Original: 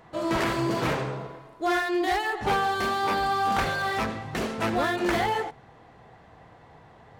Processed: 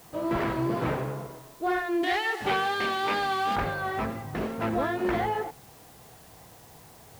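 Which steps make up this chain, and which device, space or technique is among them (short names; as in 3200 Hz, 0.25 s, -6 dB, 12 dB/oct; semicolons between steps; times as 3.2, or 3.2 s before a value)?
cassette deck with a dirty head (tape spacing loss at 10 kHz 29 dB; wow and flutter; white noise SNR 25 dB); 2.03–3.56 weighting filter D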